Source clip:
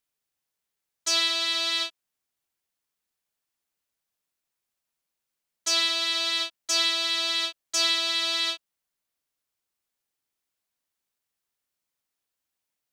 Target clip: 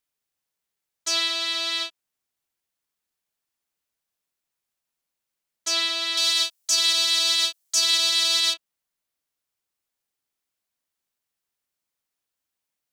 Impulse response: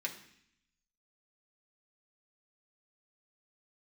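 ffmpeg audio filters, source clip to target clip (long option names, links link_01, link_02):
-filter_complex "[0:a]asettb=1/sr,asplit=3[link_01][link_02][link_03];[link_01]atrim=end=6.174[link_04];[link_02]atrim=start=6.17:end=8.54,asetpts=PTS-STARTPTS,afade=type=in:duration=0.004:curve=qsin,afade=type=out:start_time=2.366:duration=0.004:curve=qsin,bass=frequency=250:gain=-9,treble=frequency=4000:gain=13[link_05];[link_03]atrim=start=8.536[link_06];[link_04][link_05]acrossfade=duration=0.004:curve1=hsin:curve2=qsin[link_07];[link_07][link_06]acrossfade=duration=0.004:curve1=qsin:curve2=hsin,alimiter=limit=-11dB:level=0:latency=1:release=13"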